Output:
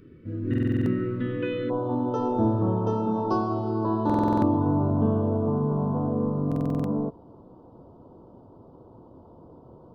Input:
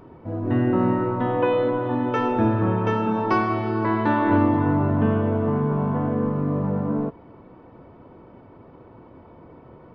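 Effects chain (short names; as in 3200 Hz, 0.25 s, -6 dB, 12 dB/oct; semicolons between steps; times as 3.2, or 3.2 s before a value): Butterworth band-stop 820 Hz, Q 0.66, from 1.69 s 2100 Hz; stuck buffer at 0.49/4.05/6.47, samples 2048, times 7; gain -2.5 dB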